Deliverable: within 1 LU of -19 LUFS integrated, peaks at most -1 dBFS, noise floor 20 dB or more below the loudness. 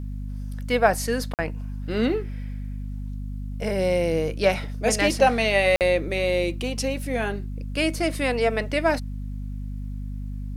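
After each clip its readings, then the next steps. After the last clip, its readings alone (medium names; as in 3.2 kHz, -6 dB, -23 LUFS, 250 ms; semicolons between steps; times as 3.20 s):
dropouts 2; longest dropout 48 ms; hum 50 Hz; highest harmonic 250 Hz; hum level -29 dBFS; loudness -25.0 LUFS; peak level -4.0 dBFS; loudness target -19.0 LUFS
-> interpolate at 1.34/5.76 s, 48 ms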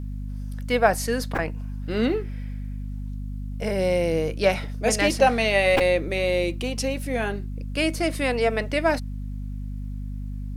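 dropouts 0; hum 50 Hz; highest harmonic 250 Hz; hum level -29 dBFS
-> hum notches 50/100/150/200/250 Hz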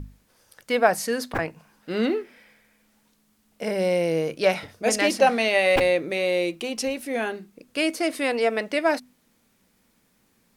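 hum not found; loudness -24.0 LUFS; peak level -4.0 dBFS; loudness target -19.0 LUFS
-> trim +5 dB; peak limiter -1 dBFS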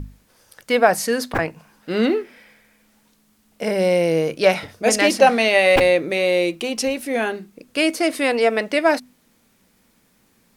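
loudness -19.0 LUFS; peak level -1.0 dBFS; noise floor -61 dBFS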